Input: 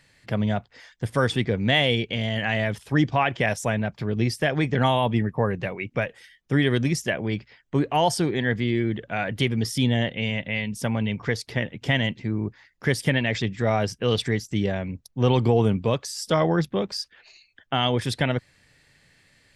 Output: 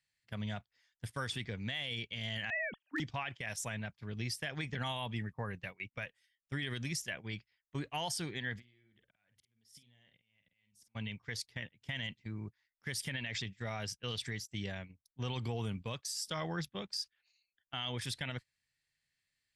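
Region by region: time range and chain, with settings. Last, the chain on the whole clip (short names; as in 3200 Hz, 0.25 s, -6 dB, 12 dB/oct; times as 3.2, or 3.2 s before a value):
2.5–3 sine-wave speech + low shelf 390 Hz +4.5 dB + hard clip -9.5 dBFS
8.56–10.95 compressor 16:1, threshold -31 dBFS + auto swell 0.515 s + doubler 49 ms -7.5 dB
whole clip: passive tone stack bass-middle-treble 5-5-5; limiter -28.5 dBFS; gate -44 dBFS, range -17 dB; gain +1 dB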